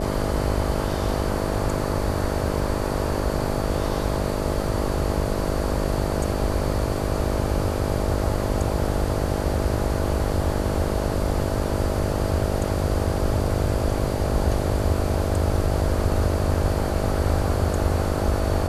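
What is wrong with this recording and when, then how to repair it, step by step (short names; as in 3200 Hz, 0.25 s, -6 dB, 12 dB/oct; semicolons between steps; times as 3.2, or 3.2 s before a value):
buzz 50 Hz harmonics 13 -27 dBFS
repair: de-hum 50 Hz, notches 13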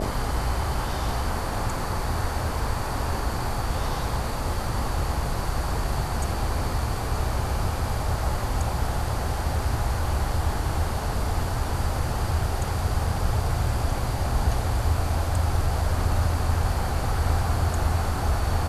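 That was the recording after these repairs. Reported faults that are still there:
none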